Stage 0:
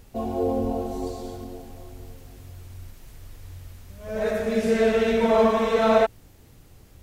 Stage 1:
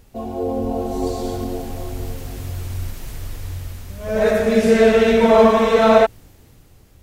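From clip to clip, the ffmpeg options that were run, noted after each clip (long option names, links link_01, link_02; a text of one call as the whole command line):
ffmpeg -i in.wav -af "dynaudnorm=framelen=230:gausssize=9:maxgain=14.5dB" out.wav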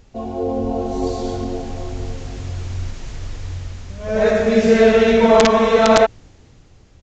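ffmpeg -i in.wav -af "aresample=16000,aeval=exprs='(mod(1.33*val(0)+1,2)-1)/1.33':channel_layout=same,aresample=44100,alimiter=level_in=2dB:limit=-1dB:release=50:level=0:latency=1,volume=-1dB" out.wav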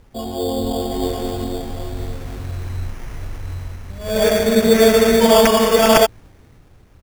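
ffmpeg -i in.wav -af "acrusher=samples=11:mix=1:aa=0.000001" out.wav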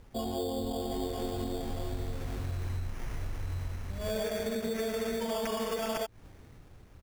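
ffmpeg -i in.wav -af "alimiter=limit=-8.5dB:level=0:latency=1:release=107,acompressor=threshold=-25dB:ratio=10,volume=-5dB" out.wav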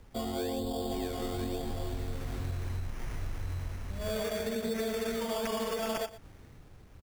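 ffmpeg -i in.wav -filter_complex "[0:a]acrossover=split=250|430|5000[link_01][link_02][link_03][link_04];[link_02]acrusher=samples=18:mix=1:aa=0.000001:lfo=1:lforange=18:lforate=1[link_05];[link_01][link_05][link_03][link_04]amix=inputs=4:normalize=0,aecho=1:1:117:0.158" out.wav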